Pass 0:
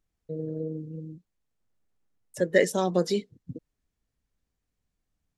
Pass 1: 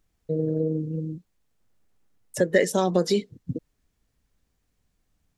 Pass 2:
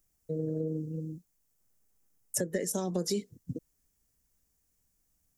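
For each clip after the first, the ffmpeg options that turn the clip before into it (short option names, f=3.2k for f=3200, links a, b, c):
-af "acompressor=threshold=-28dB:ratio=2.5,volume=8.5dB"
-filter_complex "[0:a]acrossover=split=370[a][b];[b]acompressor=threshold=-28dB:ratio=10[c];[a][c]amix=inputs=2:normalize=0,aexciter=amount=4.6:drive=4.5:freq=5.4k,volume=-7dB"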